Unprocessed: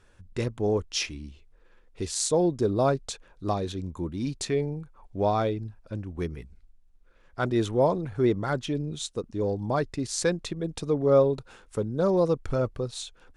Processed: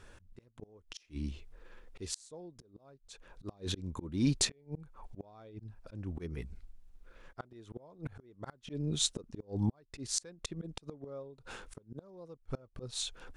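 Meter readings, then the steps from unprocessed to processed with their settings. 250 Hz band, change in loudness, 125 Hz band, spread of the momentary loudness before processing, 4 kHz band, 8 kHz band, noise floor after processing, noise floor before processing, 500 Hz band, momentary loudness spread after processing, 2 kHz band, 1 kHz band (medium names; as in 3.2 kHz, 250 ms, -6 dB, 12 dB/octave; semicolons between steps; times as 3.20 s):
-10.5 dB, -11.0 dB, -9.5 dB, 13 LU, -3.0 dB, -4.0 dB, -68 dBFS, -58 dBFS, -22.5 dB, 20 LU, -12.5 dB, -21.5 dB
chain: inverted gate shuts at -19 dBFS, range -30 dB; slow attack 350 ms; trim +4.5 dB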